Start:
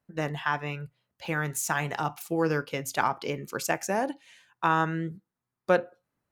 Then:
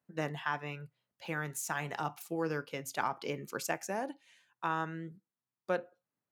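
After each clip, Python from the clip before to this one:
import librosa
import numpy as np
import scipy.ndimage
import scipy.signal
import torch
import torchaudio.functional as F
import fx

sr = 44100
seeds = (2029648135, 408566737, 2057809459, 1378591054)

y = scipy.signal.sosfilt(scipy.signal.butter(2, 120.0, 'highpass', fs=sr, output='sos'), x)
y = fx.rider(y, sr, range_db=10, speed_s=0.5)
y = F.gain(torch.from_numpy(y), -7.5).numpy()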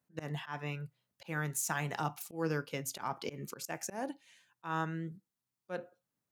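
y = fx.bass_treble(x, sr, bass_db=5, treble_db=4)
y = fx.auto_swell(y, sr, attack_ms=138.0)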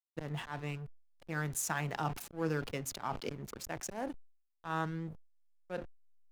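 y = fx.backlash(x, sr, play_db=-41.5)
y = fx.sustainer(y, sr, db_per_s=110.0)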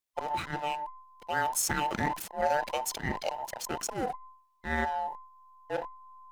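y = fx.band_invert(x, sr, width_hz=1000)
y = fx.transformer_sat(y, sr, knee_hz=500.0)
y = F.gain(torch.from_numpy(y), 7.0).numpy()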